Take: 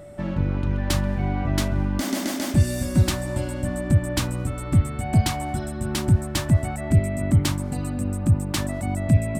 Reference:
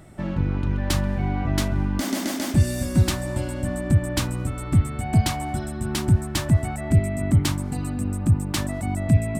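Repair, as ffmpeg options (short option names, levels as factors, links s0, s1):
-af "bandreject=f=580:w=30"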